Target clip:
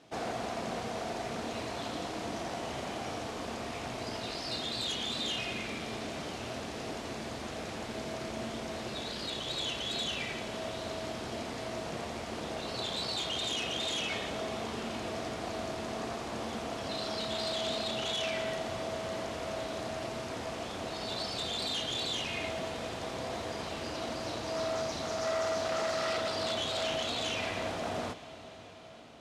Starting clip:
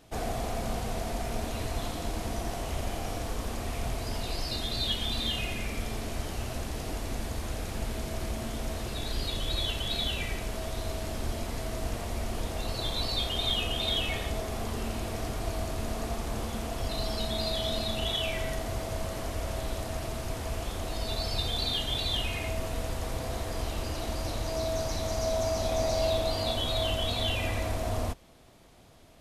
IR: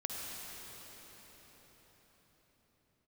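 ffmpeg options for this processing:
-filter_complex "[0:a]aeval=exprs='0.0422*(abs(mod(val(0)/0.0422+3,4)-2)-1)':c=same,highpass=170,lowpass=6100,asplit=2[s0][s1];[1:a]atrim=start_sample=2205,asetrate=26901,aresample=44100,adelay=34[s2];[s1][s2]afir=irnorm=-1:irlink=0,volume=0.141[s3];[s0][s3]amix=inputs=2:normalize=0"

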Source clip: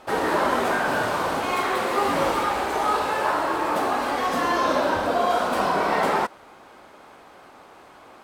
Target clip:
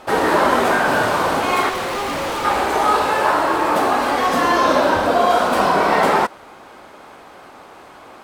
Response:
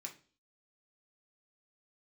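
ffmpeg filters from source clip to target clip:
-filter_complex "[0:a]asettb=1/sr,asplit=3[s0][s1][s2];[s0]atrim=end=1.694[s3];[s1]atrim=start=1.69:end=2.45,asetpts=PTS-STARTPTS,afade=t=in:d=0.004:c=qsin,afade=t=out:st=0.756:d=0.004:c=qsin,asoftclip=type=hard:threshold=0.0398[s4];[s2]atrim=start=2.446[s5];[s3][s4]acrossfade=d=0.004:c1=hsin:c2=qsin[s6];[s6][s5]acrossfade=d=0.004:c1=qsin:c2=hsin,volume=2.11"

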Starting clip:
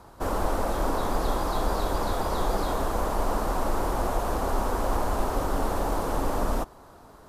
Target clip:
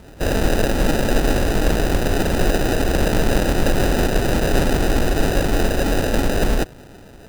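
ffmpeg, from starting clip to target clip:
-filter_complex "[0:a]asettb=1/sr,asplit=3[s0][s1][s2];[s0]atrim=end=2.884[s3];[s1]atrim=start=2.88:end=4.96,asetpts=PTS-STARTPTS,afade=t=in:d=0.004:c=qsin,afade=t=out:st=2.076:d=0.004:c=qsin,equalizer=f=3900:t=o:w=2:g=8[s4];[s2]atrim=start=4.956[s5];[s3][s4]acrossfade=d=0.004:c1=hsin:c2=qsin[s6];[s6][s5]acrossfade=d=0.004:c1=qsin:c2=hsin,acrusher=samples=40:mix=1:aa=0.000001,volume=2.66"

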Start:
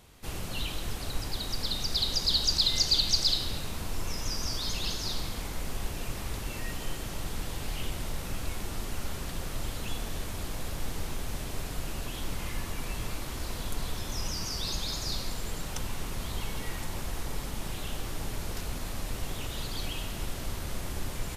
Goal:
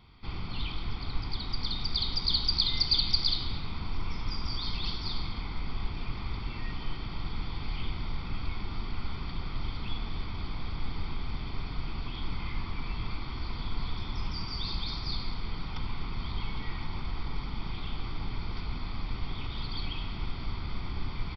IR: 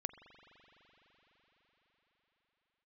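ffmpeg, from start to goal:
-af "aecho=1:1:0.9:0.67,aresample=11025,aresample=44100,volume=0.708"

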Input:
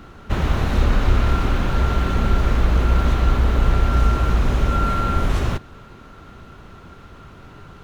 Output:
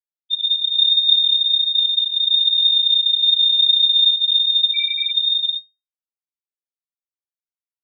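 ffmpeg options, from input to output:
-af "aecho=1:1:619|1238|1857:0.158|0.0586|0.0217,afftfilt=real='re*gte(hypot(re,im),0.708)':imag='im*gte(hypot(re,im),0.708)':win_size=1024:overlap=0.75,lowpass=f=3100:t=q:w=0.5098,lowpass=f=3100:t=q:w=0.6013,lowpass=f=3100:t=q:w=0.9,lowpass=f=3100:t=q:w=2.563,afreqshift=-3700"

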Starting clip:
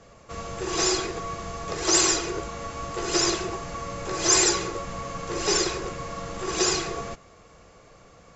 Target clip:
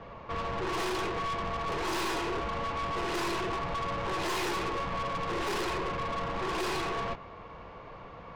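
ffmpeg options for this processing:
-af "lowpass=f=3400:w=0.5412,lowpass=f=3400:w=1.3066,equalizer=f=960:t=o:w=0.31:g=11,aeval=exprs='(tanh(63.1*val(0)+0.3)-tanh(0.3))/63.1':c=same,volume=1.88"

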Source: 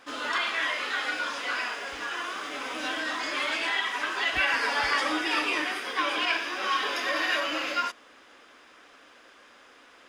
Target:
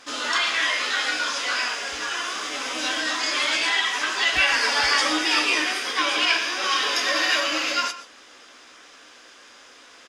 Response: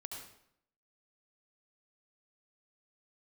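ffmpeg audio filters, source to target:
-filter_complex "[0:a]equalizer=f=6100:w=0.76:g=11,asplit=2[s0][s1];[s1]adelay=16,volume=0.282[s2];[s0][s2]amix=inputs=2:normalize=0,asplit=2[s3][s4];[1:a]atrim=start_sample=2205,atrim=end_sample=3969,asetrate=26019,aresample=44100[s5];[s4][s5]afir=irnorm=-1:irlink=0,volume=0.447[s6];[s3][s6]amix=inputs=2:normalize=0"

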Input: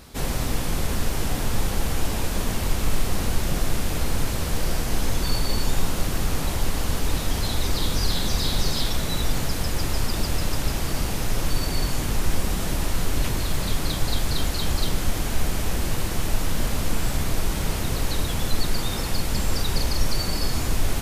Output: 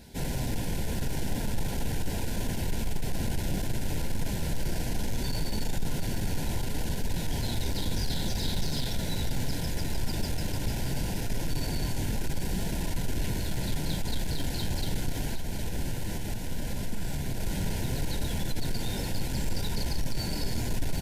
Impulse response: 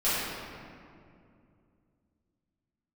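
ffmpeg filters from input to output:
-filter_complex "[0:a]equalizer=f=150:t=o:w=2.3:g=5.5,asettb=1/sr,asplit=3[s0][s1][s2];[s0]atrim=end=15.254[s3];[s1]atrim=start=15.25:end=17.4,asetpts=PTS-STARTPTS,afade=t=in:d=0.004:c=qsin,afade=t=out:st=2.146:d=0.004:c=qsin,acompressor=threshold=0.112:ratio=6[s4];[s2]atrim=start=17.396[s5];[s3][s4]acrossfade=d=0.004:c1=hsin:c2=qsin[s6];[s6][s5]acrossfade=d=0.004:c1=qsin:c2=hsin,flanger=delay=4.2:depth=6.5:regen=77:speed=0.71:shape=triangular,asoftclip=type=tanh:threshold=0.1,asuperstop=centerf=1200:order=12:qfactor=3.6,aecho=1:1:763:0.251,volume=0.841"

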